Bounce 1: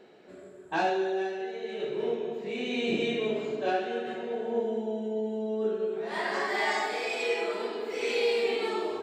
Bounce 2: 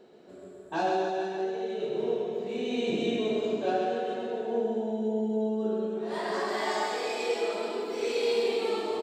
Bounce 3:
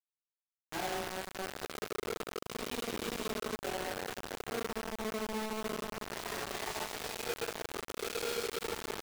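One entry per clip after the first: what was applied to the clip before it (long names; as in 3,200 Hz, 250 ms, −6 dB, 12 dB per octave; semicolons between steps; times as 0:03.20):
parametric band 2,100 Hz −8.5 dB 1.1 octaves; notch filter 800 Hz, Q 24; reverse bouncing-ball delay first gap 130 ms, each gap 1.1×, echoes 5
downward compressor 2 to 1, threshold −33 dBFS, peak gain reduction 6 dB; bit reduction 5 bits; level −6 dB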